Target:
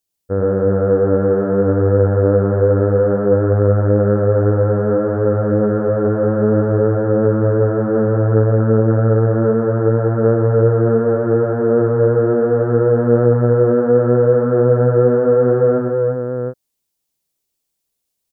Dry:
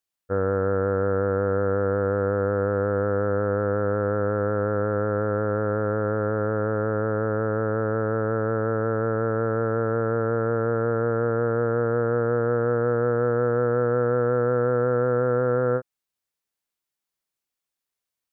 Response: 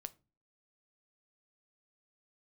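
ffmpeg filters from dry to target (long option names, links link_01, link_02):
-filter_complex "[0:a]equalizer=frequency=1500:width_type=o:width=2:gain=-12,asplit=2[link_01][link_02];[link_02]aecho=0:1:71|108|324|352|563|720:0.376|0.596|0.106|0.631|0.133|0.562[link_03];[link_01][link_03]amix=inputs=2:normalize=0,volume=8.5dB"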